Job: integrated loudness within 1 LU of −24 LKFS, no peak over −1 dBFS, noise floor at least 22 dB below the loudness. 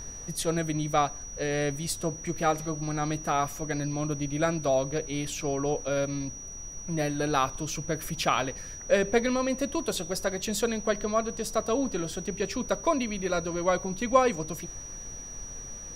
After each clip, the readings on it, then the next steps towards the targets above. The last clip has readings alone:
interfering tone 5,800 Hz; level of the tone −40 dBFS; background noise floor −41 dBFS; target noise floor −52 dBFS; integrated loudness −29.5 LKFS; sample peak −9.0 dBFS; target loudness −24.0 LKFS
→ notch filter 5,800 Hz, Q 30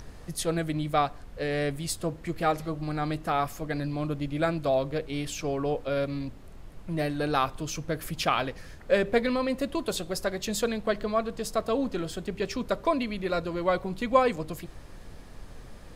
interfering tone none found; background noise floor −46 dBFS; target noise floor −52 dBFS
→ noise reduction from a noise print 6 dB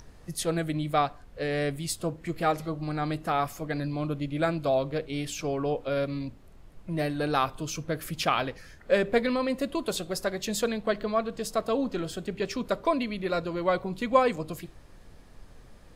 background noise floor −51 dBFS; target noise floor −52 dBFS
→ noise reduction from a noise print 6 dB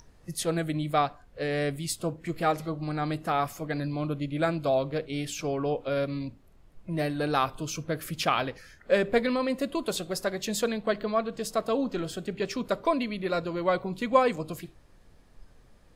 background noise floor −57 dBFS; integrated loudness −29.5 LKFS; sample peak −9.0 dBFS; target loudness −24.0 LKFS
→ level +5.5 dB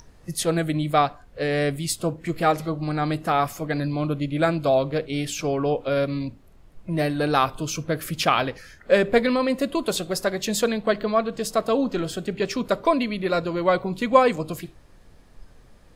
integrated loudness −24.0 LKFS; sample peak −3.5 dBFS; background noise floor −51 dBFS

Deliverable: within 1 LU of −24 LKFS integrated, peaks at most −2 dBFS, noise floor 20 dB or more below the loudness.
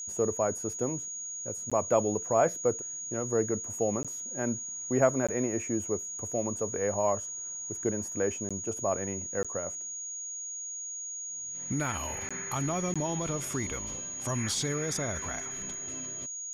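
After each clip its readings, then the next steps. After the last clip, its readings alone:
number of dropouts 7; longest dropout 16 ms; interfering tone 6,700 Hz; level of the tone −36 dBFS; integrated loudness −31.5 LKFS; sample peak −9.0 dBFS; target loudness −24.0 LKFS
→ repair the gap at 0:01.70/0:04.03/0:05.27/0:08.49/0:09.43/0:12.29/0:12.94, 16 ms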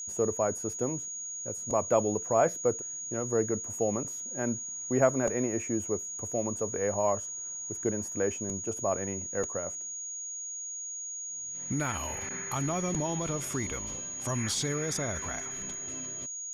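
number of dropouts 0; interfering tone 6,700 Hz; level of the tone −36 dBFS
→ notch filter 6,700 Hz, Q 30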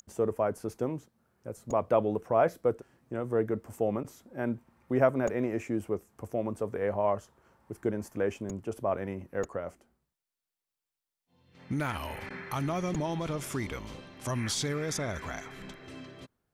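interfering tone none found; integrated loudness −32.5 LKFS; sample peak −9.5 dBFS; target loudness −24.0 LKFS
→ level +8.5 dB
brickwall limiter −2 dBFS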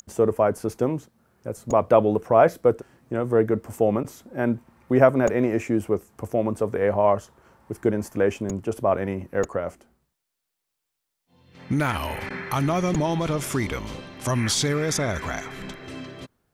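integrated loudness −24.0 LKFS; sample peak −2.0 dBFS; background noise floor −81 dBFS

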